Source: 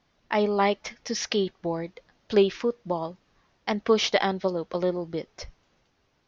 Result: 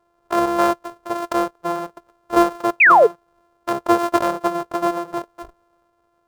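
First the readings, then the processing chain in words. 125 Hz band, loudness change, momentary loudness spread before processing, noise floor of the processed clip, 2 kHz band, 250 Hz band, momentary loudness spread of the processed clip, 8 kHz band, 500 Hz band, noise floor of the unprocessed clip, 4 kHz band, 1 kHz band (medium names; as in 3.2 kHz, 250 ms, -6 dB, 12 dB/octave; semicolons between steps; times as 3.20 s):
-4.0 dB, +8.0 dB, 14 LU, -66 dBFS, +14.0 dB, +6.0 dB, 16 LU, no reading, +4.5 dB, -70 dBFS, -5.5 dB, +12.5 dB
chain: sorted samples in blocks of 128 samples; high-order bell 740 Hz +14 dB 2.3 oct; painted sound fall, 2.80–3.07 s, 400–2700 Hz -5 dBFS; trim -5 dB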